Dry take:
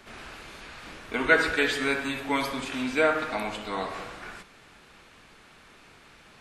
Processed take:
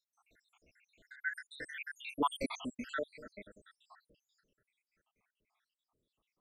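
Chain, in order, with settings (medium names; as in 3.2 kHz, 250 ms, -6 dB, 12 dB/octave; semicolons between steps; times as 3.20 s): random holes in the spectrogram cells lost 85%; Doppler pass-by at 2.38 s, 14 m/s, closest 2.2 m; trim +2 dB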